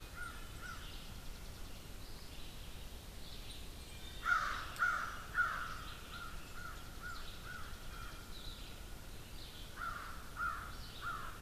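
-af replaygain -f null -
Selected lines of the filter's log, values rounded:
track_gain = +24.3 dB
track_peak = 0.061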